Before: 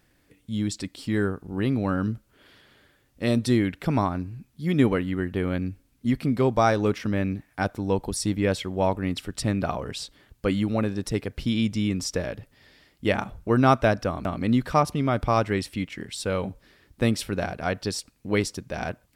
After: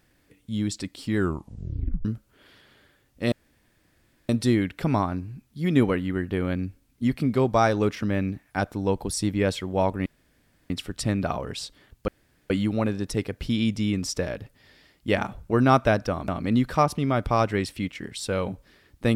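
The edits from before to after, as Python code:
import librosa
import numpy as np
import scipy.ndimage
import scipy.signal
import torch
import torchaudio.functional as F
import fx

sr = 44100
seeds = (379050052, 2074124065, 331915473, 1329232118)

y = fx.edit(x, sr, fx.tape_stop(start_s=1.17, length_s=0.88),
    fx.insert_room_tone(at_s=3.32, length_s=0.97),
    fx.insert_room_tone(at_s=9.09, length_s=0.64),
    fx.insert_room_tone(at_s=10.47, length_s=0.42), tone=tone)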